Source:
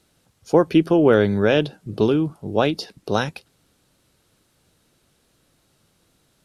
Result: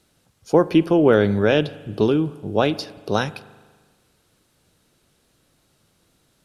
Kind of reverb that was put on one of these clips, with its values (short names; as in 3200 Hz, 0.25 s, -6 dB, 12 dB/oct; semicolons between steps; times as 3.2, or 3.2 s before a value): spring tank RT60 1.5 s, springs 39 ms, chirp 55 ms, DRR 17 dB